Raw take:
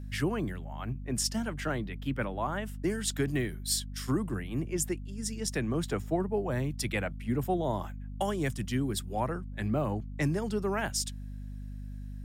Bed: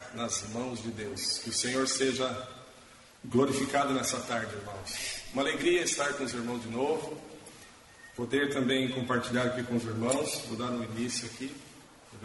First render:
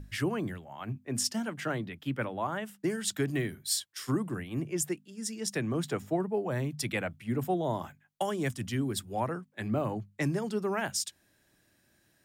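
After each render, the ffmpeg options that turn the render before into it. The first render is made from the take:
-af "bandreject=f=50:t=h:w=6,bandreject=f=100:t=h:w=6,bandreject=f=150:t=h:w=6,bandreject=f=200:t=h:w=6,bandreject=f=250:t=h:w=6"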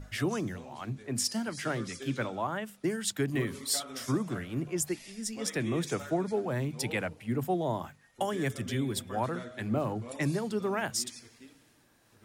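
-filter_complex "[1:a]volume=0.188[s0];[0:a][s0]amix=inputs=2:normalize=0"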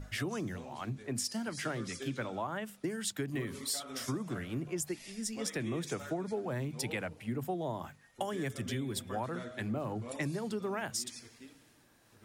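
-af "acompressor=threshold=0.0224:ratio=4"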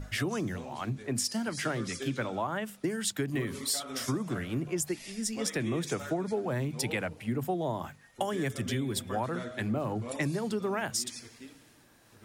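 -af "volume=1.68"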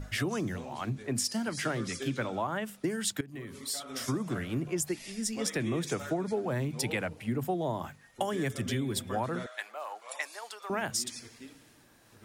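-filter_complex "[0:a]asettb=1/sr,asplit=3[s0][s1][s2];[s0]atrim=end=9.464[s3];[s1]atrim=start=9.46:end=10.7,asetpts=PTS-STARTPTS,afade=t=in:d=0.004:c=qsin,afade=t=out:st=1.236:d=0.004:c=qsin,highpass=f=720:w=0.5412,highpass=f=720:w=1.3066[s4];[s2]atrim=start=10.696[s5];[s3][s4]acrossfade=d=0.004:c1=hsin:c2=qsin[s6];[s6][s5]acrossfade=d=0.004:c1=qsin:c2=hsin,asplit=2[s7][s8];[s7]atrim=end=3.21,asetpts=PTS-STARTPTS,afade=t=out:st=3.206:d=0.004:c=hsin:silence=0.149624[s9];[s8]atrim=start=3.21,asetpts=PTS-STARTPTS,afade=t=in:d=0.97:silence=0.149624[s10];[s9][s10]concat=n=2:v=0:a=1"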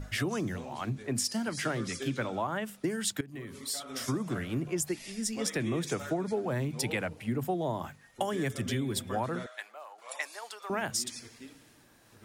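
-filter_complex "[0:a]asplit=2[s0][s1];[s0]atrim=end=9.98,asetpts=PTS-STARTPTS,afade=t=out:st=9.31:d=0.67:silence=0.281838[s2];[s1]atrim=start=9.98,asetpts=PTS-STARTPTS,afade=t=in:d=0.004:c=hsin:silence=0.281838[s3];[s2][s3]concat=n=2:v=0:a=1"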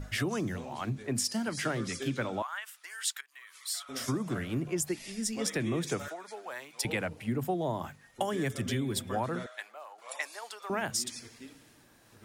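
-filter_complex "[0:a]asettb=1/sr,asplit=3[s0][s1][s2];[s0]atrim=end=2.424[s3];[s1]atrim=start=2.42:end=3.89,asetpts=PTS-STARTPTS,afade=t=in:d=0.004:c=qsin,afade=t=out:st=1.466:d=0.004:c=qsin,highpass=f=1100:w=0.5412,highpass=f=1100:w=1.3066[s4];[s2]atrim=start=3.886[s5];[s3][s4]acrossfade=d=0.004:c1=hsin:c2=qsin[s6];[s6][s5]acrossfade=d=0.004:c1=qsin:c2=hsin,asettb=1/sr,asplit=3[s7][s8][s9];[s7]atrim=end=6.084[s10];[s8]atrim=start=6.08:end=6.85,asetpts=PTS-STARTPTS,afade=t=in:d=0.004:c=qsin,afade=t=out:st=0.766:d=0.004:c=qsin,highpass=950[s11];[s9]atrim=start=6.846[s12];[s10][s11]acrossfade=d=0.004:c1=hsin:c2=qsin[s13];[s13][s12]acrossfade=d=0.004:c1=qsin:c2=hsin"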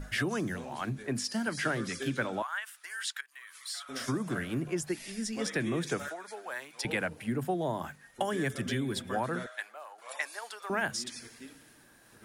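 -filter_complex "[0:a]acrossover=split=6200[s0][s1];[s1]acompressor=threshold=0.00316:ratio=4:attack=1:release=60[s2];[s0][s2]amix=inputs=2:normalize=0,equalizer=f=100:t=o:w=0.33:g=-8,equalizer=f=1600:t=o:w=0.33:g=6,equalizer=f=10000:t=o:w=0.33:g=7"

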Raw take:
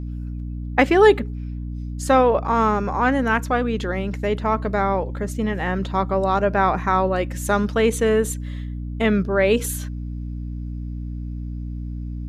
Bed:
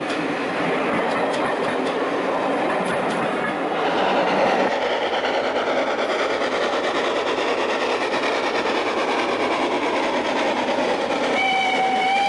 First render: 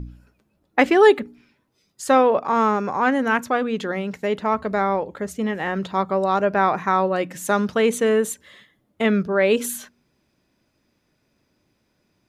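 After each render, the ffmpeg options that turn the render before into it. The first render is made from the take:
-af "bandreject=f=60:t=h:w=4,bandreject=f=120:t=h:w=4,bandreject=f=180:t=h:w=4,bandreject=f=240:t=h:w=4,bandreject=f=300:t=h:w=4"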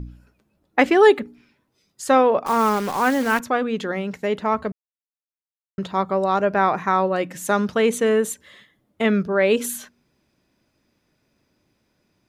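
-filter_complex "[0:a]asettb=1/sr,asplit=3[s0][s1][s2];[s0]atrim=end=2.464[s3];[s1]atrim=start=2.46:end=3.4,asetpts=PTS-STARTPTS,afade=t=in:d=0.004:c=qsin,afade=t=out:st=0.936:d=0.004:c=qsin,acrusher=bits=6:dc=4:mix=0:aa=0.000001[s4];[s2]atrim=start=3.396[s5];[s3][s4]acrossfade=d=0.004:c1=hsin:c2=qsin[s6];[s6][s5]acrossfade=d=0.004:c1=qsin:c2=hsin,asplit=3[s7][s8][s9];[s7]atrim=end=4.72,asetpts=PTS-STARTPTS,afade=t=out:st=4.716:d=0.004:c=hsin[s10];[s8]atrim=start=4.72:end=5.78,asetpts=PTS-STARTPTS,volume=0[s11];[s9]atrim=start=5.78,asetpts=PTS-STARTPTS,afade=t=in:d=0.004:c=hsin[s12];[s10][s11][s12]concat=n=3:v=0:a=1"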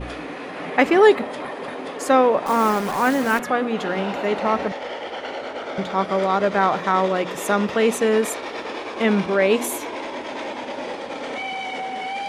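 -filter_complex "[1:a]volume=0.355[s0];[0:a][s0]amix=inputs=2:normalize=0"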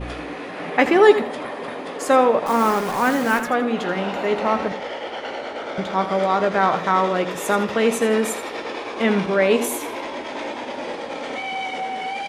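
-filter_complex "[0:a]asplit=2[s0][s1];[s1]adelay=17,volume=0.266[s2];[s0][s2]amix=inputs=2:normalize=0,aecho=1:1:82|164|246:0.251|0.0728|0.0211"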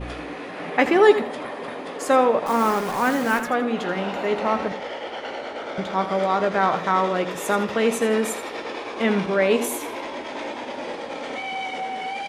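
-af "volume=0.794"

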